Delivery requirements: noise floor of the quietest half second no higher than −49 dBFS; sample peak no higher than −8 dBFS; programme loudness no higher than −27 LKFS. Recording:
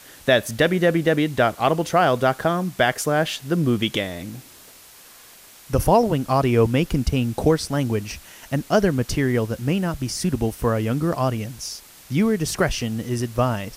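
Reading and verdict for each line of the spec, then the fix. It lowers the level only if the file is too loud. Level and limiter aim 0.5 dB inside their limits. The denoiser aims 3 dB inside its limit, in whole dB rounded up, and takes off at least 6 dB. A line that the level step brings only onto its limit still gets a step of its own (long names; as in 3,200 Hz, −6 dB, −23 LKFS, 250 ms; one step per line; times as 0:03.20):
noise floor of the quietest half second −47 dBFS: out of spec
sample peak −6.0 dBFS: out of spec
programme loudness −21.5 LKFS: out of spec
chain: level −6 dB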